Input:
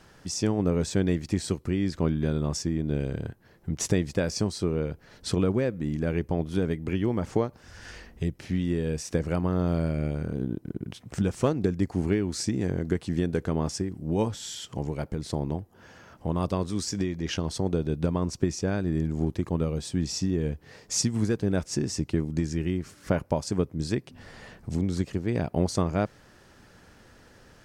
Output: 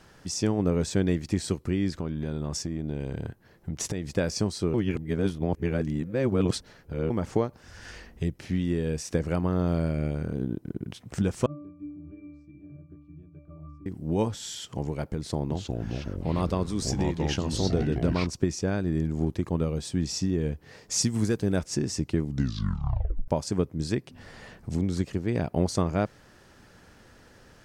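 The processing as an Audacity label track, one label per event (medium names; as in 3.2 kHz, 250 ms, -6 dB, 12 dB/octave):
1.940000	4.170000	compression 10:1, threshold -26 dBFS
4.740000	7.100000	reverse
11.460000	13.860000	pitch-class resonator D, decay 0.75 s
15.180000	18.270000	ever faster or slower copies 322 ms, each echo -4 st, echoes 3
21.010000	21.590000	treble shelf 6 kHz +8.5 dB
22.230000	22.230000	tape stop 1.05 s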